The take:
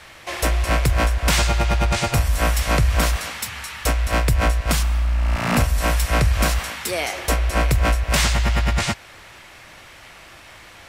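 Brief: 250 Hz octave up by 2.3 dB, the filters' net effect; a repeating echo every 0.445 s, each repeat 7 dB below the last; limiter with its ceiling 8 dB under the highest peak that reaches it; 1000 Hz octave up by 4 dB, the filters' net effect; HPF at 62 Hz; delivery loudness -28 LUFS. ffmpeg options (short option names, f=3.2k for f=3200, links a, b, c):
-af "highpass=62,equalizer=f=250:t=o:g=3,equalizer=f=1k:t=o:g=5,alimiter=limit=-12.5dB:level=0:latency=1,aecho=1:1:445|890|1335|1780|2225:0.447|0.201|0.0905|0.0407|0.0183,volume=-5.5dB"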